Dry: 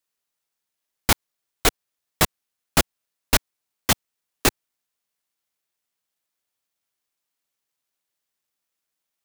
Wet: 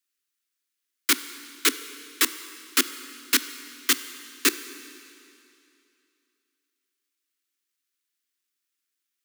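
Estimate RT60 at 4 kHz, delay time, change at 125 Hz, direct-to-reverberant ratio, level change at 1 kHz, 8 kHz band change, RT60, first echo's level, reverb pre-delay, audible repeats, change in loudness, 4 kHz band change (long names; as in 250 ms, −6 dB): 2.6 s, no echo audible, below −35 dB, 12.0 dB, −7.5 dB, 0.0 dB, 2.7 s, no echo audible, 20 ms, no echo audible, −1.0 dB, 0.0 dB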